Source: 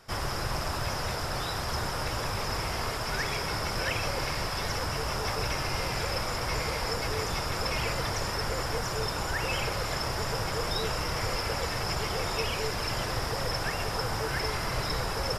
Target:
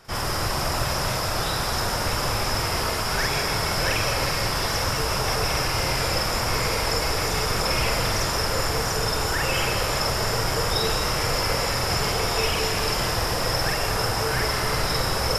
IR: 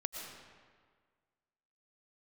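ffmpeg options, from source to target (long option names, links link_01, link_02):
-filter_complex "[0:a]asplit=2[link_01][link_02];[link_02]highshelf=frequency=5700:gain=9.5[link_03];[1:a]atrim=start_sample=2205,adelay=47[link_04];[link_03][link_04]afir=irnorm=-1:irlink=0,volume=-1dB[link_05];[link_01][link_05]amix=inputs=2:normalize=0,volume=3.5dB"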